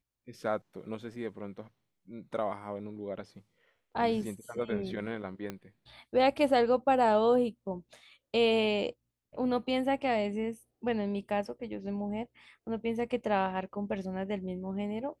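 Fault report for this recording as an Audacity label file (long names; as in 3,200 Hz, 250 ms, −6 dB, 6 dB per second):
5.500000	5.500000	click −23 dBFS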